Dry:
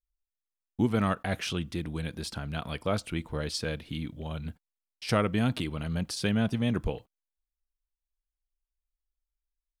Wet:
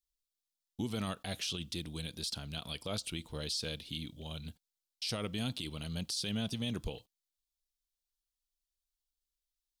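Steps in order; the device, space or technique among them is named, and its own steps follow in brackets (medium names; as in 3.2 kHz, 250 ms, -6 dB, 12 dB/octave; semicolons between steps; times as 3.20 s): over-bright horn tweeter (resonant high shelf 2.6 kHz +12 dB, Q 1.5; peak limiter -18.5 dBFS, peak gain reduction 11.5 dB); trim -8 dB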